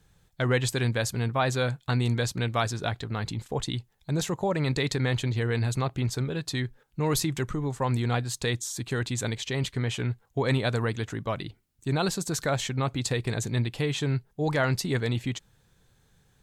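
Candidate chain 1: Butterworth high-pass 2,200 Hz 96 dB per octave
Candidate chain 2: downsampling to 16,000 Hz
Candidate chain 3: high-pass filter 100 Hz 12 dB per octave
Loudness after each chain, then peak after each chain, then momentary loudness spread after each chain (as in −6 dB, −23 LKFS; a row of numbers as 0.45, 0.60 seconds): −36.5, −28.5, −29.0 LKFS; −15.0, −12.5, −11.0 dBFS; 12, 7, 7 LU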